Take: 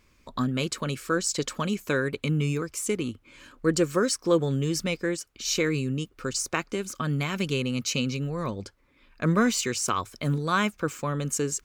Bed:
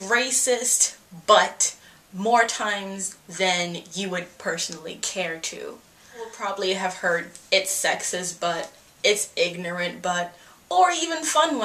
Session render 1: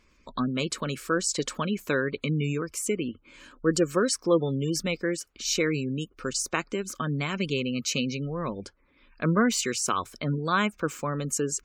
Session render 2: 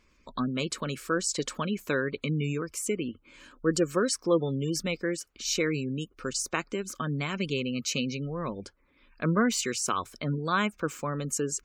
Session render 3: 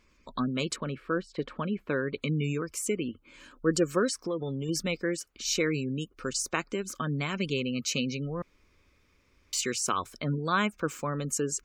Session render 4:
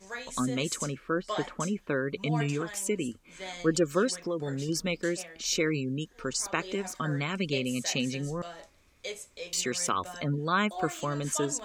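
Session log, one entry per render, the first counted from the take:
bell 110 Hz -12 dB 0.37 oct; spectral gate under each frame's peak -30 dB strong
gain -2 dB
0.76–2.13 air absorption 440 m; 4.09–4.69 compressor 3:1, threshold -30 dBFS; 8.42–9.53 room tone
add bed -18.5 dB

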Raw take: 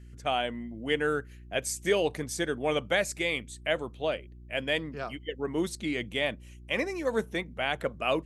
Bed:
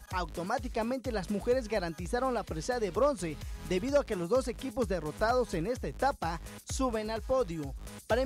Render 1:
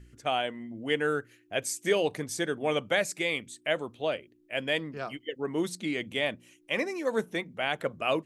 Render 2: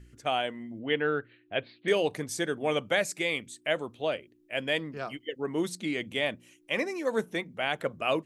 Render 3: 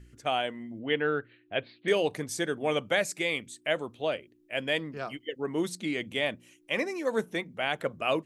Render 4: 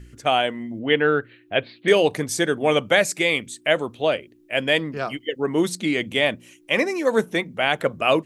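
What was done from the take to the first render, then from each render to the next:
de-hum 60 Hz, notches 4
0.79–1.88 steep low-pass 4200 Hz 96 dB/oct
nothing audible
gain +9 dB

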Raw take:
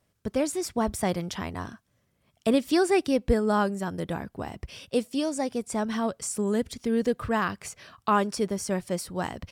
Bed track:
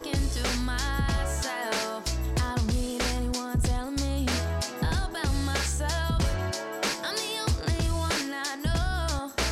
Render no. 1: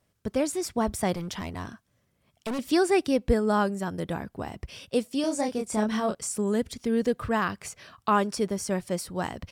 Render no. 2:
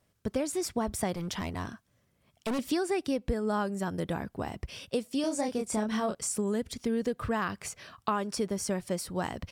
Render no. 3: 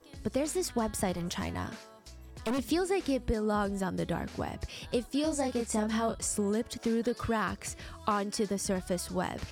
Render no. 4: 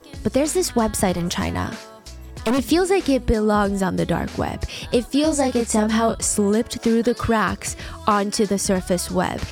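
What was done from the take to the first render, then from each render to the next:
1.16–2.59 overloaded stage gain 28.5 dB; 5.21–6.15 doubler 28 ms -4 dB
compressor 6:1, threshold -26 dBFS, peak gain reduction 9 dB
add bed track -20.5 dB
gain +11.5 dB

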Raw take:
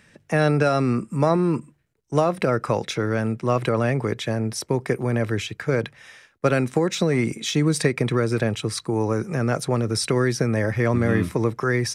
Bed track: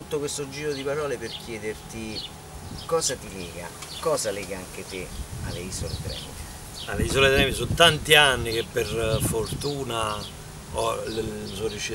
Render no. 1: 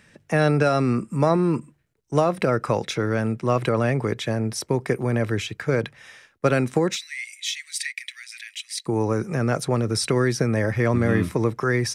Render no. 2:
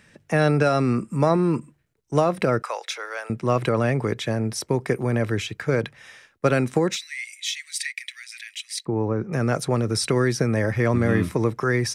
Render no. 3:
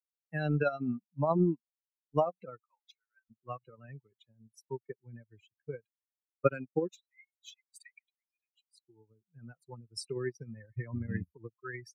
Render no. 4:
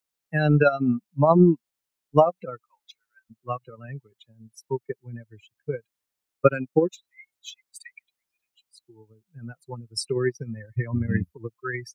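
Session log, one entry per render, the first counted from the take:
6.96–8.86 Chebyshev high-pass 1900 Hz, order 5
2.62–3.3 Bessel high-pass 860 Hz, order 6; 8.85–9.33 tape spacing loss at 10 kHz 35 dB
per-bin expansion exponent 3; upward expander 2.5:1, over -42 dBFS
gain +11 dB; limiter -2 dBFS, peak gain reduction 2.5 dB

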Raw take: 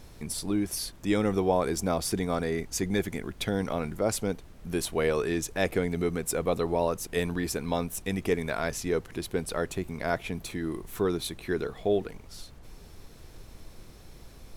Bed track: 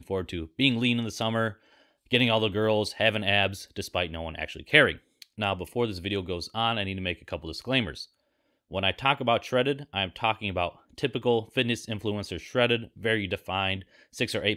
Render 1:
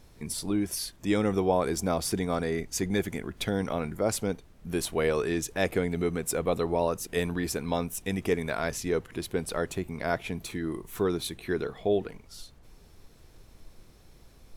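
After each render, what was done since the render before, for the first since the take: noise print and reduce 6 dB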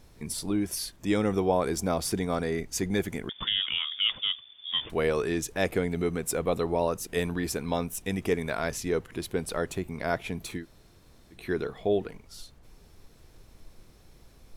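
3.29–4.9 inverted band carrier 3500 Hz; 10.61–11.35 room tone, crossfade 0.10 s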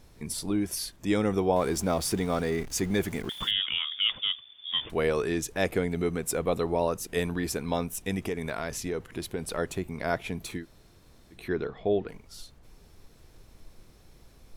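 1.56–3.51 zero-crossing step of -40 dBFS; 8.27–9.58 compressor 5:1, threshold -27 dBFS; 11.48–12.08 air absorption 140 m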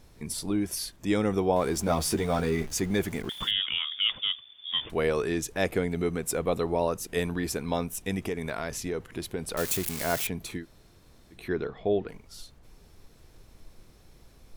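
1.86–2.74 doubler 13 ms -3.5 dB; 9.57–10.27 switching spikes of -21 dBFS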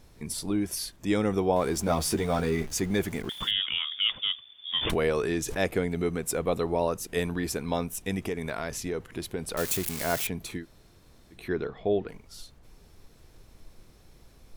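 4.78–5.58 backwards sustainer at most 34 dB/s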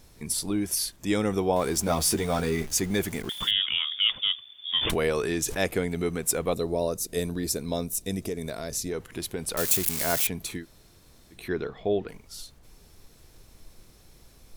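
high shelf 4000 Hz +7.5 dB; 6.54–8.91 spectral gain 700–3500 Hz -8 dB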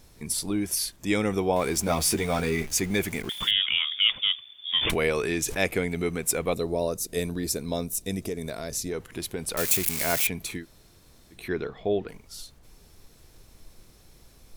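dynamic EQ 2300 Hz, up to +7 dB, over -48 dBFS, Q 3.5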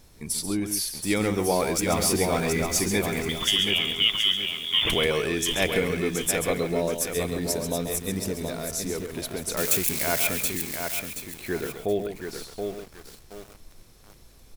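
on a send: echo 0.135 s -8.5 dB; on the sum: lo-fi delay 0.725 s, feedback 35%, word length 7-bit, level -5 dB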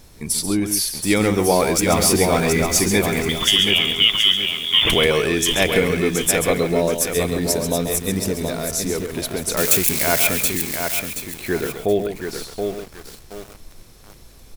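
gain +7 dB; limiter -3 dBFS, peak gain reduction 2.5 dB

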